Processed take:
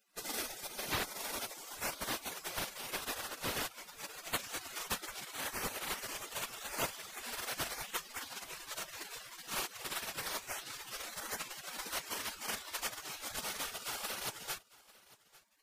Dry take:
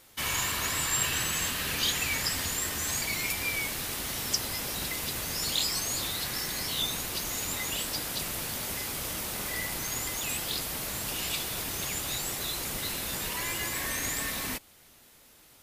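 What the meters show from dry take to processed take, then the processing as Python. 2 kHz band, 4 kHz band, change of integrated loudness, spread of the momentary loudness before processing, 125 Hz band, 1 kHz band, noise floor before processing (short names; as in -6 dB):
-8.5 dB, -10.0 dB, -10.0 dB, 5 LU, -14.0 dB, -4.0 dB, -57 dBFS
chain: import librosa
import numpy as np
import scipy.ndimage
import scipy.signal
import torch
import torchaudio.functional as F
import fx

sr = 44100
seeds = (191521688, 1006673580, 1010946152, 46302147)

y = fx.dereverb_blind(x, sr, rt60_s=0.58)
y = fx.spec_gate(y, sr, threshold_db=-20, keep='weak')
y = fx.high_shelf(y, sr, hz=3700.0, db=-11.5)
y = fx.rider(y, sr, range_db=5, speed_s=0.5)
y = y + 10.0 ** (-21.5 / 20.0) * np.pad(y, (int(849 * sr / 1000.0), 0))[:len(y)]
y = y * 10.0 ** (10.5 / 20.0)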